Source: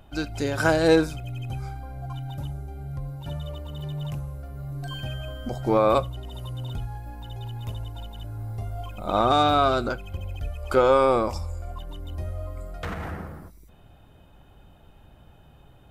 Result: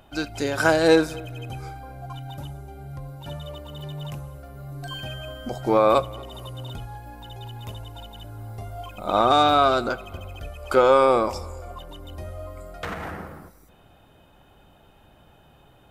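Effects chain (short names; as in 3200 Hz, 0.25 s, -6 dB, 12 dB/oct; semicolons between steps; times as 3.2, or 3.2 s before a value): low shelf 170 Hz -10 dB; tape echo 0.242 s, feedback 49%, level -21 dB, low-pass 2200 Hz; gain +3 dB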